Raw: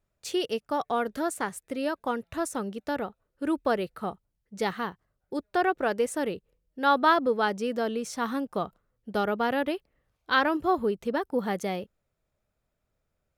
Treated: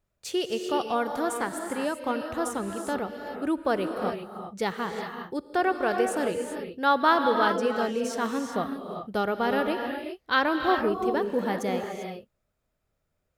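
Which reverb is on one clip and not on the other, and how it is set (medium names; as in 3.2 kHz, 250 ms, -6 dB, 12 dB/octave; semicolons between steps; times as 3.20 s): gated-style reverb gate 420 ms rising, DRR 4 dB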